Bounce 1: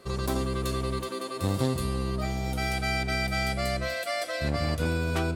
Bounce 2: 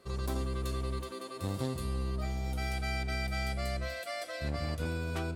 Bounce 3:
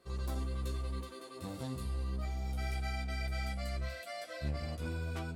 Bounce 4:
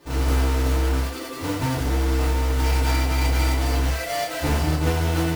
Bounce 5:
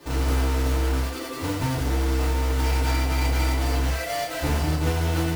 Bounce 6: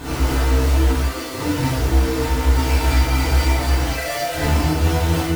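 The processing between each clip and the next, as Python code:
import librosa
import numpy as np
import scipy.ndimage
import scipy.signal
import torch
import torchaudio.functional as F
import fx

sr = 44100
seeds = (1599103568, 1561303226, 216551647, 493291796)

y1 = fx.peak_eq(x, sr, hz=66.0, db=6.5, octaves=0.34)
y1 = y1 * 10.0 ** (-8.0 / 20.0)
y2 = fx.chorus_voices(y1, sr, voices=4, hz=0.87, base_ms=14, depth_ms=2.8, mix_pct=40)
y2 = y2 * 10.0 ** (-2.5 / 20.0)
y3 = fx.halfwave_hold(y2, sr)
y3 = fx.rev_fdn(y3, sr, rt60_s=0.37, lf_ratio=0.8, hf_ratio=0.95, size_ms=20.0, drr_db=-7.5)
y3 = y3 * 10.0 ** (4.5 / 20.0)
y4 = fx.band_squash(y3, sr, depth_pct=40)
y4 = y4 * 10.0 ** (-2.0 / 20.0)
y5 = fx.phase_scramble(y4, sr, seeds[0], window_ms=200)
y5 = y5 * 10.0 ** (5.5 / 20.0)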